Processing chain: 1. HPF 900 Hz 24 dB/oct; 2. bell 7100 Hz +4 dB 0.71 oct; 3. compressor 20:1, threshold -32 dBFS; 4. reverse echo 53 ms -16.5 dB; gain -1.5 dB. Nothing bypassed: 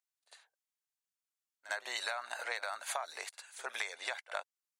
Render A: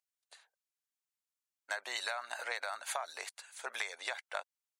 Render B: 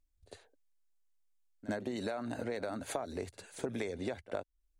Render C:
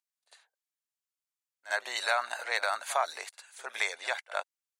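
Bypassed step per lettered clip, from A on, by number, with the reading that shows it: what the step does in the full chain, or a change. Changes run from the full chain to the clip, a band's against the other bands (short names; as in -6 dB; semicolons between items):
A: 4, momentary loudness spread change -1 LU; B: 1, 500 Hz band +15.5 dB; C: 3, mean gain reduction 5.0 dB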